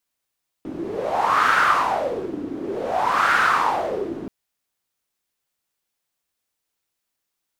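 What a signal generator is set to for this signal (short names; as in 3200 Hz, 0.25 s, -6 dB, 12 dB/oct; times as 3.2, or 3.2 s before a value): wind-like swept noise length 3.63 s, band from 300 Hz, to 1400 Hz, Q 5.8, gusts 2, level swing 13.5 dB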